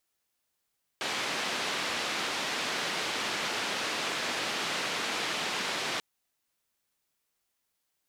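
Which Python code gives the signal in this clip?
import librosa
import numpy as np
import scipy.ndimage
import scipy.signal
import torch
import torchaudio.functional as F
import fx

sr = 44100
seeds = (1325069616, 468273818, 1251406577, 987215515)

y = fx.band_noise(sr, seeds[0], length_s=4.99, low_hz=200.0, high_hz=3700.0, level_db=-32.5)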